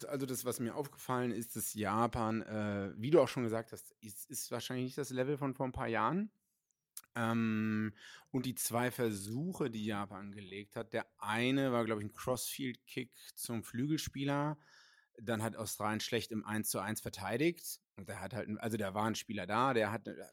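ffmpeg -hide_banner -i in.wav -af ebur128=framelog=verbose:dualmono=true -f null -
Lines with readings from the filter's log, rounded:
Integrated loudness:
  I:         -34.3 LUFS
  Threshold: -44.6 LUFS
Loudness range:
  LRA:         3.3 LU
  Threshold: -54.8 LUFS
  LRA low:   -36.2 LUFS
  LRA high:  -32.9 LUFS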